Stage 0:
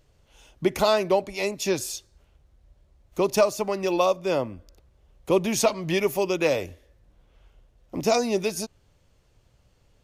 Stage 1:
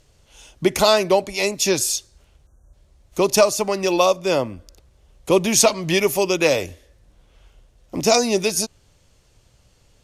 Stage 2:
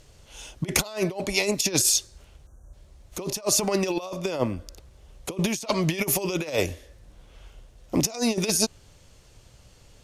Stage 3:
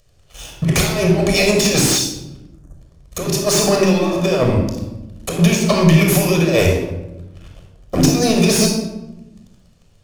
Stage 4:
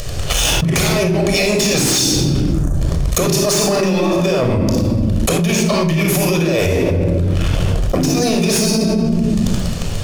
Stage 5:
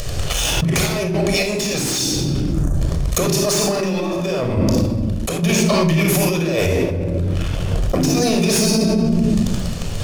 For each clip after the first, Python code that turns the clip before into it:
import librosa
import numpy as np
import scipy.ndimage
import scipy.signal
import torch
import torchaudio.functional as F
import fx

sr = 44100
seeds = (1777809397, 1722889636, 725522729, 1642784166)

y1 = scipy.signal.sosfilt(scipy.signal.butter(2, 11000.0, 'lowpass', fs=sr, output='sos'), x)
y1 = fx.spec_erase(y1, sr, start_s=2.47, length_s=0.26, low_hz=1700.0, high_hz=5700.0)
y1 = fx.high_shelf(y1, sr, hz=4100.0, db=10.0)
y1 = y1 * librosa.db_to_amplitude(4.5)
y2 = fx.over_compress(y1, sr, threshold_db=-23.0, ratio=-0.5)
y2 = y2 * librosa.db_to_amplitude(-1.5)
y3 = fx.leveller(y2, sr, passes=3)
y3 = fx.room_shoebox(y3, sr, seeds[0], volume_m3=3900.0, walls='furnished', distance_m=6.0)
y3 = fx.slew_limit(y3, sr, full_power_hz=1800.0)
y3 = y3 * librosa.db_to_amplitude(-4.5)
y4 = fx.env_flatten(y3, sr, amount_pct=100)
y4 = y4 * librosa.db_to_amplitude(-7.5)
y5 = fx.tremolo_random(y4, sr, seeds[1], hz=3.5, depth_pct=55)